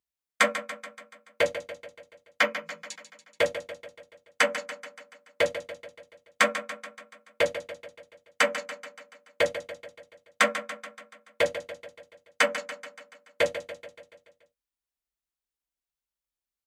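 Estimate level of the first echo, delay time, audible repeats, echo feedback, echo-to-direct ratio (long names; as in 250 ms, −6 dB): −11.5 dB, 143 ms, 5, 58%, −9.5 dB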